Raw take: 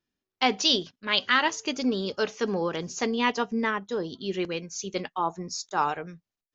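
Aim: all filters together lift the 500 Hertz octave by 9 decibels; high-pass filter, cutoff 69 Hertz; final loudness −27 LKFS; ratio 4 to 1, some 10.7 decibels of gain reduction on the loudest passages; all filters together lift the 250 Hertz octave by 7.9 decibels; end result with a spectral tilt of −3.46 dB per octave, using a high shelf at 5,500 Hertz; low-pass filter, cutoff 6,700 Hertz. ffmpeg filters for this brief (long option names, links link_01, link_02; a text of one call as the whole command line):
ffmpeg -i in.wav -af "highpass=69,lowpass=6700,equalizer=frequency=250:width_type=o:gain=7,equalizer=frequency=500:width_type=o:gain=8.5,highshelf=frequency=5500:gain=-7.5,acompressor=threshold=-26dB:ratio=4,volume=3.5dB" out.wav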